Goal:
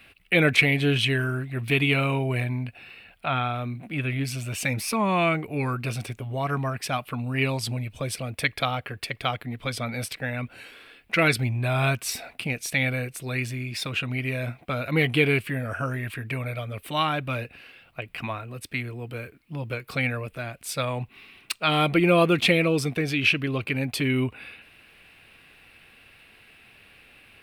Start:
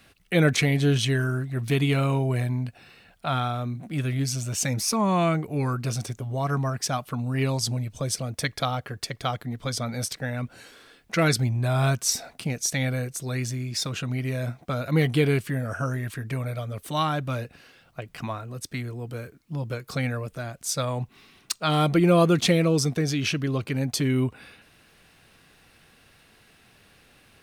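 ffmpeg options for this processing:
ffmpeg -i in.wav -filter_complex "[0:a]asettb=1/sr,asplit=3[link_01][link_02][link_03];[link_01]atrim=end=2.444[link_04];[link_02]atrim=start=2.44:end=4.25,asetpts=PTS-STARTPTS,afade=type=in:duration=0.004:curve=qsin,afade=type=out:start_time=1.806:duration=0.004:curve=qsin,acrossover=split=3500[link_05][link_06];[link_06]acompressor=threshold=-52dB:ratio=4:attack=1:release=60[link_07];[link_05][link_07]amix=inputs=2:normalize=0[link_08];[link_03]atrim=start=4.246[link_09];[link_04][link_08]acrossfade=duration=0.004:curve1=hsin:curve2=qsin[link_10];[link_10][link_09]acrossfade=duration=0.004:curve1=qsin:curve2=hsin,equalizer=frequency=160:width_type=o:width=0.67:gain=-4,equalizer=frequency=2500:width_type=o:width=0.67:gain=11,equalizer=frequency=6300:width_type=o:width=0.67:gain=-11" out.wav

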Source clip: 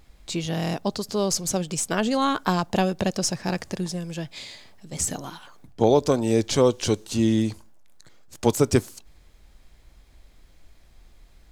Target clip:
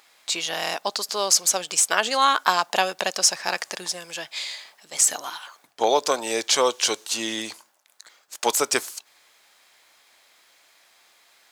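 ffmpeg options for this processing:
ffmpeg -i in.wav -af "highpass=890,volume=8dB" out.wav

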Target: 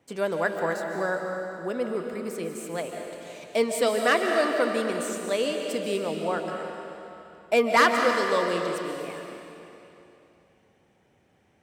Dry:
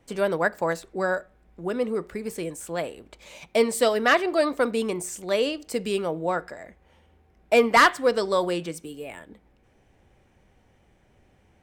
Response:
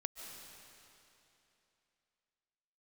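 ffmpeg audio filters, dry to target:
-filter_complex "[0:a]highpass=120[link_01];[1:a]atrim=start_sample=2205[link_02];[link_01][link_02]afir=irnorm=-1:irlink=0"

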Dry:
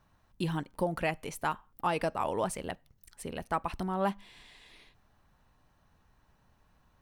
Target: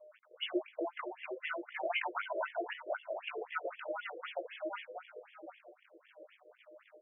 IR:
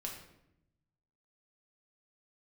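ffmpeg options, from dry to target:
-filter_complex "[0:a]afftfilt=real='real(if(between(b,1,1008),(2*floor((b-1)/24)+1)*24-b,b),0)':imag='imag(if(between(b,1,1008),(2*floor((b-1)/24)+1)*24-b,b),0)*if(between(b,1,1008),-1,1)':win_size=2048:overlap=0.75,equalizer=frequency=6400:width=2.1:gain=9,bandreject=frequency=50:width_type=h:width=6,bandreject=frequency=100:width_type=h:width=6,bandreject=frequency=150:width_type=h:width=6,acrusher=bits=9:mix=0:aa=0.000001,deesser=0.8,highpass=frequency=77:width=0.5412,highpass=frequency=77:width=1.3066,asplit=2[link_01][link_02];[link_02]adelay=714,lowpass=frequency=1000:poles=1,volume=-5.5dB,asplit=2[link_03][link_04];[link_04]adelay=714,lowpass=frequency=1000:poles=1,volume=0.36,asplit=2[link_05][link_06];[link_06]adelay=714,lowpass=frequency=1000:poles=1,volume=0.36,asplit=2[link_07][link_08];[link_08]adelay=714,lowpass=frequency=1000:poles=1,volume=0.36[link_09];[link_01][link_03][link_05][link_07][link_09]amix=inputs=5:normalize=0,aeval=exprs='val(0)+0.000708*sin(2*PI*610*n/s)':channel_layout=same,alimiter=level_in=2.5dB:limit=-24dB:level=0:latency=1:release=182,volume=-2.5dB,flanger=delay=18:depth=2.6:speed=0.59,superequalizer=9b=0.398:12b=2:13b=1.58,afftfilt=real='re*between(b*sr/1024,460*pow(2500/460,0.5+0.5*sin(2*PI*3.9*pts/sr))/1.41,460*pow(2500/460,0.5+0.5*sin(2*PI*3.9*pts/sr))*1.41)':imag='im*between(b*sr/1024,460*pow(2500/460,0.5+0.5*sin(2*PI*3.9*pts/sr))/1.41,460*pow(2500/460,0.5+0.5*sin(2*PI*3.9*pts/sr))*1.41)':win_size=1024:overlap=0.75,volume=10dB"

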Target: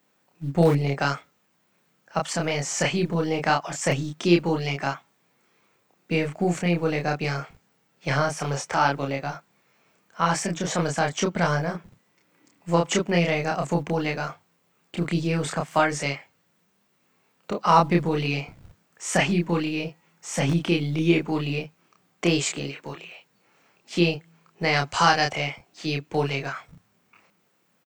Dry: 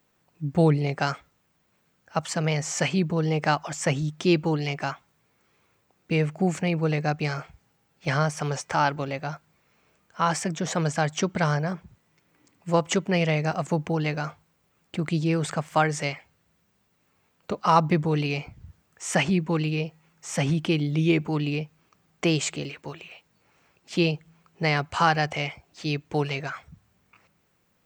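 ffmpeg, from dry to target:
ffmpeg -i in.wav -filter_complex "[0:a]asettb=1/sr,asplit=3[link_01][link_02][link_03];[link_01]atrim=end=24.734[link_04];[link_02]atrim=start=24.73:end=25.32,asetpts=PTS-STARTPTS,afade=type=in:duration=0.004:curve=qsin,afade=type=out:start_time=0.586:duration=0.004:curve=qsin,equalizer=frequency=5800:width=0.87:gain=8[link_05];[link_03]atrim=start=25.316[link_06];[link_04][link_05]acrossfade=duration=0.004:curve1=hsin:curve2=qsin[link_07];[link_07][link_06]acrossfade=duration=0.004:curve1=qsin:curve2=hsin,acrossover=split=120[link_08][link_09];[link_08]acrusher=bits=6:dc=4:mix=0:aa=0.000001[link_10];[link_09]asplit=2[link_11][link_12];[link_12]adelay=29,volume=-2.5dB[link_13];[link_11][link_13]amix=inputs=2:normalize=0[link_14];[link_10][link_14]amix=inputs=2:normalize=0" out.wav

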